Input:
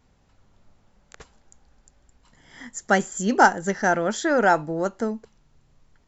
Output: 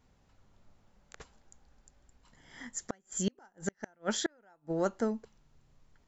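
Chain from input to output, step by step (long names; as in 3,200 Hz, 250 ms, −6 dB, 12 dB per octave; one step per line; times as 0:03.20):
gate with flip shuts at −14 dBFS, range −39 dB
0:02.70–0:04.85: dynamic equaliser 3,200 Hz, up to +4 dB, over −45 dBFS, Q 0.76
level −5 dB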